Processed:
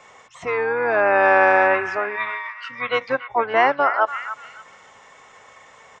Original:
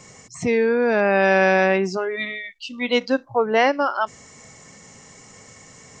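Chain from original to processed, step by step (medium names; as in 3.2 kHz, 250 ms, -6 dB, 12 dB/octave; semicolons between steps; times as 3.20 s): harmony voices -12 st -6 dB, -7 st -17 dB; three-band isolator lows -22 dB, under 560 Hz, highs -18 dB, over 2.2 kHz; repeats whose band climbs or falls 288 ms, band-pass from 1.5 kHz, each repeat 0.7 oct, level -8.5 dB; trim +5 dB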